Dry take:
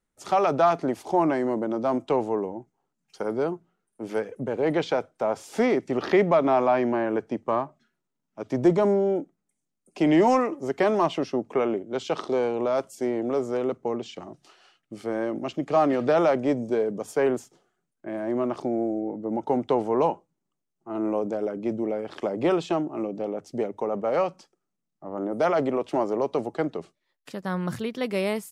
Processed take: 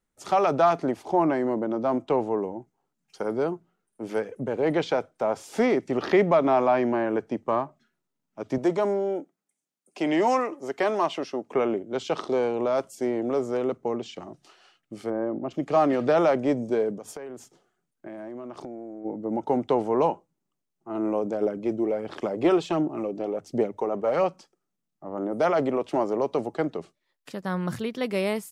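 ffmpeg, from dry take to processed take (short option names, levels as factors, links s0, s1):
-filter_complex "[0:a]asettb=1/sr,asplit=3[s0][s1][s2];[s0]atrim=end=0.914[s3];[s1]atrim=start=0.91:end=2.39,asetpts=PTS-STARTPTS,afade=t=in:d=0.004:c=qsin,afade=t=out:st=1.476:d=0.004:c=qsin,highshelf=f=4500:g=-7.5[s4];[s2]atrim=start=2.386[s5];[s3][s4]acrossfade=d=0.004:c1=hsin:c2=qsin[s6];[s6][s5]acrossfade=d=0.004:c1=qsin:c2=hsin,asettb=1/sr,asplit=3[s7][s8][s9];[s7]atrim=end=8.584[s10];[s8]atrim=start=8.58:end=11.51,asetpts=PTS-STARTPTS,afade=t=in:d=0.004:c=qsin,afade=t=out:st=2.926:d=0.004:c=qsin,highpass=f=460:p=1[s11];[s9]atrim=start=11.506[s12];[s10][s11]acrossfade=d=0.004:c1=hsin:c2=qsin[s13];[s13][s12]acrossfade=d=0.004:c1=qsin:c2=hsin,asplit=3[s14][s15][s16];[s14]afade=t=out:st=15.09:d=0.02[s17];[s15]lowpass=1100,afade=t=in:st=15.09:d=0.02,afade=t=out:st=15.5:d=0.02[s18];[s16]afade=t=in:st=15.5:d=0.02[s19];[s17][s18][s19]amix=inputs=3:normalize=0,asplit=3[s20][s21][s22];[s20]afade=t=out:st=16.94:d=0.02[s23];[s21]acompressor=threshold=0.02:ratio=12:attack=3.2:release=140:knee=1:detection=peak,afade=t=in:st=16.94:d=0.02,afade=t=out:st=19.04:d=0.02[s24];[s22]afade=t=in:st=19.04:d=0.02[s25];[s23][s24][s25]amix=inputs=3:normalize=0,asplit=3[s26][s27][s28];[s26]afade=t=out:st=21.4:d=0.02[s29];[s27]aphaser=in_gain=1:out_gain=1:delay=3:decay=0.36:speed=1.4:type=sinusoidal,afade=t=in:st=21.4:d=0.02,afade=t=out:st=24.27:d=0.02[s30];[s28]afade=t=in:st=24.27:d=0.02[s31];[s29][s30][s31]amix=inputs=3:normalize=0"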